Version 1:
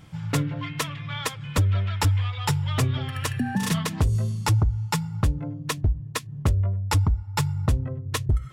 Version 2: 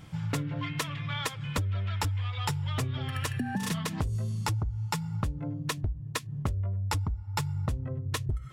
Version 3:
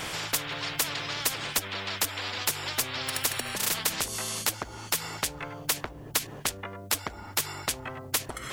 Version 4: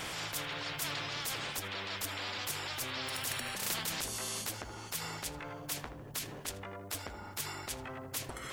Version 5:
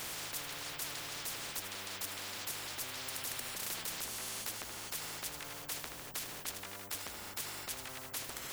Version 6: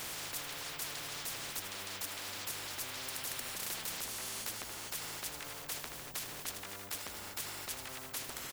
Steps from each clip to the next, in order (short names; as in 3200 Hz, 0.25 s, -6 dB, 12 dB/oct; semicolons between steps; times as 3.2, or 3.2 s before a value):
compressor, threshold -28 dBFS, peak gain reduction 10.5 dB
spectral compressor 10:1; gain +8 dB
transient shaper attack -10 dB, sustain +2 dB; tape echo 79 ms, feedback 70%, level -9 dB, low-pass 1900 Hz; gain -5 dB
spectral compressor 4:1; gain -1 dB
echo 0.237 s -12.5 dB